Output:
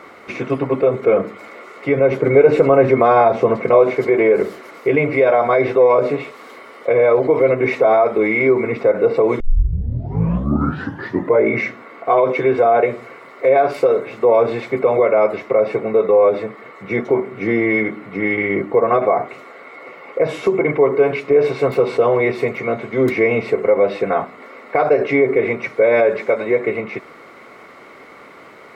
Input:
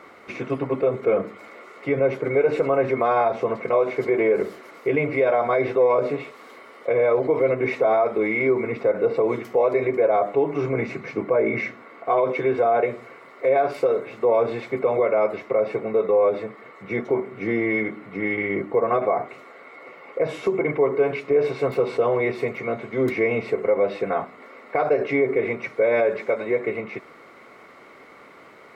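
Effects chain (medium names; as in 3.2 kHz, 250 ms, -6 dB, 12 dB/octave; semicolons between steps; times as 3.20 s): 2.11–3.95 s: bass shelf 480 Hz +5.5 dB; 9.40 s: tape start 2.05 s; trim +6 dB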